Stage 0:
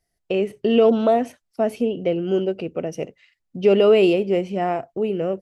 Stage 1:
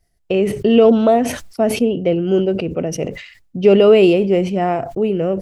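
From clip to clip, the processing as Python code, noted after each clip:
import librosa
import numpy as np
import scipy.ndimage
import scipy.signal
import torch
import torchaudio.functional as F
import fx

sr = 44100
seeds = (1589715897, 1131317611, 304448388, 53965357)

y = fx.low_shelf(x, sr, hz=140.0, db=9.5)
y = fx.sustainer(y, sr, db_per_s=82.0)
y = F.gain(torch.from_numpy(y), 3.5).numpy()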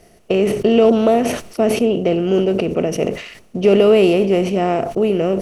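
y = fx.bin_compress(x, sr, power=0.6)
y = F.gain(torch.from_numpy(y), -3.5).numpy()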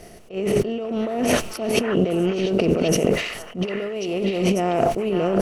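y = fx.over_compress(x, sr, threshold_db=-22.0, ratio=-1.0)
y = fx.echo_stepped(y, sr, ms=544, hz=1300.0, octaves=1.4, feedback_pct=70, wet_db=-2.0)
y = fx.attack_slew(y, sr, db_per_s=220.0)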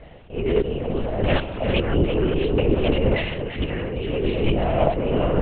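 y = x + 10.0 ** (-10.0 / 20.0) * np.pad(x, (int(341 * sr / 1000.0), 0))[:len(x)]
y = fx.lpc_vocoder(y, sr, seeds[0], excitation='whisper', order=8)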